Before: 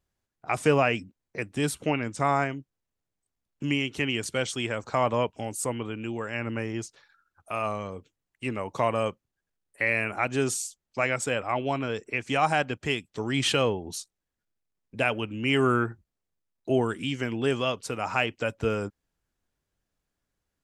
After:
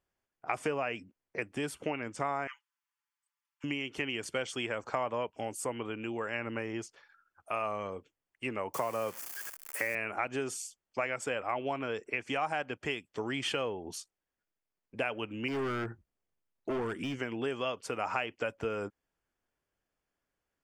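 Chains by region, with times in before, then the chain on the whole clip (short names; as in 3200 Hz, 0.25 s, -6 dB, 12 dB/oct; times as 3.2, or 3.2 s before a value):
2.47–3.64 brick-wall FIR high-pass 840 Hz + comb 5.9 ms, depth 100%
8.74–9.95 switching spikes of -24 dBFS + bell 3300 Hz -6.5 dB 0.97 oct + three-band squash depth 40%
15.48–17.19 de-esser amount 95% + hard clip -27 dBFS + low shelf 260 Hz +7 dB
whole clip: notch 3900 Hz, Q 6.8; compressor, threshold -28 dBFS; tone controls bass -9 dB, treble -7 dB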